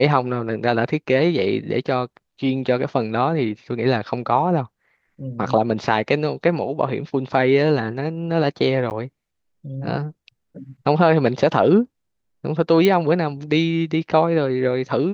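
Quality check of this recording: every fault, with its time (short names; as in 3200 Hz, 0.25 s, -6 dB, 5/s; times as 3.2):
8.9–8.91 gap 9.5 ms
12.85 pop -6 dBFS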